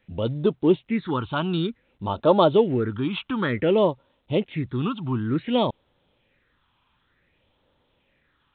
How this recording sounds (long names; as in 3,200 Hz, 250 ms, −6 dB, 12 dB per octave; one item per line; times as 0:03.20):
phaser sweep stages 6, 0.55 Hz, lowest notch 500–2,100 Hz
A-law companding